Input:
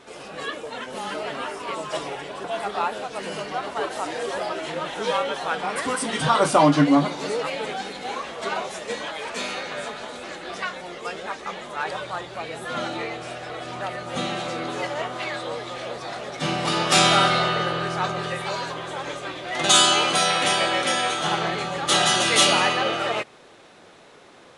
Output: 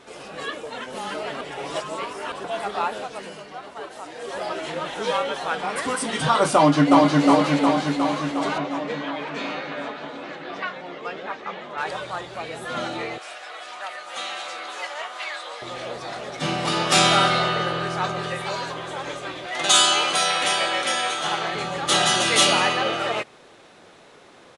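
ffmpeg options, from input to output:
ffmpeg -i in.wav -filter_complex "[0:a]asplit=2[link_01][link_02];[link_02]afade=type=in:start_time=6.55:duration=0.01,afade=type=out:start_time=7.23:duration=0.01,aecho=0:1:360|720|1080|1440|1800|2160|2520|2880|3240|3600|3960|4320:0.891251|0.623876|0.436713|0.305699|0.213989|0.149793|0.104855|0.0733983|0.0513788|0.0359652|0.0251756|0.0176229[link_03];[link_01][link_03]amix=inputs=2:normalize=0,asettb=1/sr,asplit=3[link_04][link_05][link_06];[link_04]atrim=end=8.584[link_07];[link_05]atrim=start=8.58:end=11.78,asetpts=PTS-STARTPTS,afade=type=in:duration=0.004:curve=qsin,afade=type=out:start_time=3.196:duration=0.004:curve=qsin,highpass=120,lowpass=3300[link_08];[link_06]atrim=start=11.776[link_09];[link_07][link_08]acrossfade=duration=0.004:curve1=hsin:curve2=qsin[link_10];[link_10][link_09]acrossfade=duration=0.004:curve1=qsin:curve2=hsin,asettb=1/sr,asplit=3[link_11][link_12][link_13];[link_11]atrim=end=13.184[link_14];[link_12]atrim=start=13.18:end=15.62,asetpts=PTS-STARTPTS,afade=type=in:duration=0.004:curve=qsin,afade=type=out:start_time=2.436:duration=0.004:curve=qsin,highpass=870[link_15];[link_13]atrim=start=15.616[link_16];[link_14][link_15]acrossfade=duration=0.004:curve1=hsin:curve2=qsin[link_17];[link_17][link_16]acrossfade=duration=0.004:curve1=qsin:curve2=hsin,asettb=1/sr,asplit=3[link_18][link_19][link_20];[link_18]atrim=end=19.464[link_21];[link_19]atrim=start=19.46:end=21.55,asetpts=PTS-STARTPTS,afade=type=in:duration=0.004:curve=qsin,afade=type=out:start_time=2.086:duration=0.004:curve=qsin,lowshelf=frequency=300:gain=-10.5[link_22];[link_20]atrim=start=21.546[link_23];[link_21][link_22]acrossfade=duration=0.004:curve1=hsin:curve2=qsin[link_24];[link_24][link_23]acrossfade=duration=0.004:curve1=qsin:curve2=hsin,asplit=5[link_25][link_26][link_27][link_28][link_29];[link_25]atrim=end=1.412[link_30];[link_26]atrim=start=1.408:end=2.322,asetpts=PTS-STARTPTS,areverse[link_31];[link_27]atrim=start=2.318:end=3.37,asetpts=PTS-STARTPTS,afade=type=out:start_time=0.692:duration=0.36:silence=0.375837[link_32];[link_28]atrim=start=3.37:end=4.15,asetpts=PTS-STARTPTS,volume=-8.5dB[link_33];[link_29]atrim=start=4.15,asetpts=PTS-STARTPTS,afade=type=in:duration=0.36:silence=0.375837[link_34];[link_30][link_31]acrossfade=duration=0.004:curve1=hsin:curve2=hsin[link_35];[link_32][link_33][link_34]concat=n=3:v=0:a=1[link_36];[link_35][link_36]acrossfade=duration=0.004:curve1=hsin:curve2=hsin" out.wav

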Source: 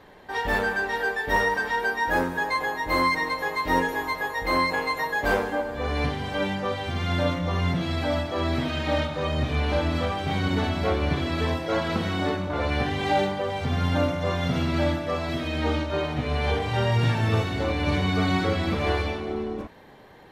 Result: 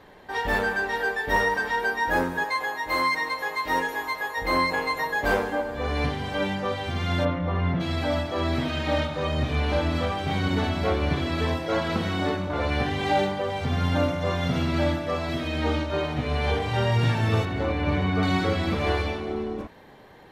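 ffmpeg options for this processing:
ffmpeg -i in.wav -filter_complex "[0:a]asettb=1/sr,asplit=3[link_01][link_02][link_03];[link_01]atrim=end=2.444[link_04];[link_02]atrim=start=2.44:end=4.37,asetpts=PTS-STARTPTS,afade=type=in:duration=0.004:curve=qsin,afade=type=out:start_time=1.926:duration=0.004:curve=qsin,lowshelf=frequency=360:gain=-11[link_05];[link_03]atrim=start=4.366[link_06];[link_04][link_05]acrossfade=duration=0.004:curve1=hsin:curve2=qsin[link_07];[link_07][link_06]acrossfade=duration=0.004:curve1=qsin:curve2=hsin,asplit=3[link_08][link_09][link_10];[link_08]afade=type=out:start_time=7.24:duration=0.02[link_11];[link_09]lowpass=2200,afade=type=in:start_time=7.24:duration=0.02,afade=type=out:start_time=7.79:duration=0.02[link_12];[link_10]afade=type=in:start_time=7.79:duration=0.02[link_13];[link_11][link_12][link_13]amix=inputs=3:normalize=0,asettb=1/sr,asplit=3[link_14][link_15][link_16];[link_14]atrim=end=17.454[link_17];[link_15]atrim=start=17.45:end=18.23,asetpts=PTS-STARTPTS,afade=type=in:duration=0.004:curve=qsin,afade=type=out:start_time=0.776:duration=0.004:curve=qsin,acrossover=split=2800[link_18][link_19];[link_19]acompressor=threshold=-50dB:ratio=4:attack=1:release=60[link_20];[link_18][link_20]amix=inputs=2:normalize=0[link_21];[link_16]atrim=start=18.226[link_22];[link_17][link_21]acrossfade=duration=0.004:curve1=hsin:curve2=qsin[link_23];[link_23][link_22]acrossfade=duration=0.004:curve1=qsin:curve2=hsin" out.wav

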